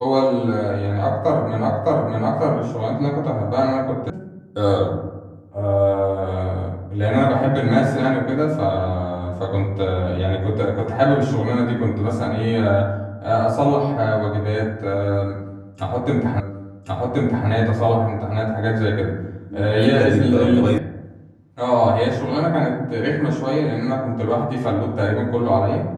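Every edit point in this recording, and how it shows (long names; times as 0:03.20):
0:01.70: the same again, the last 0.61 s
0:04.10: cut off before it has died away
0:16.40: the same again, the last 1.08 s
0:20.78: cut off before it has died away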